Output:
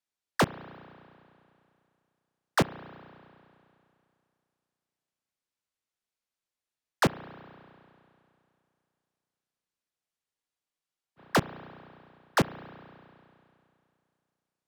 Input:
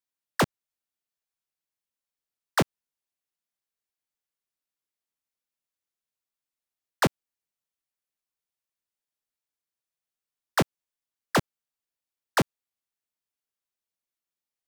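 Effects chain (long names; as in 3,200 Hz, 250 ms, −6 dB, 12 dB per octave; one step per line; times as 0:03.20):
spring reverb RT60 2.6 s, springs 33 ms, chirp 40 ms, DRR 15 dB
frozen spectrum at 0:10.35, 0.82 s
linearly interpolated sample-rate reduction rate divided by 2×
level −1 dB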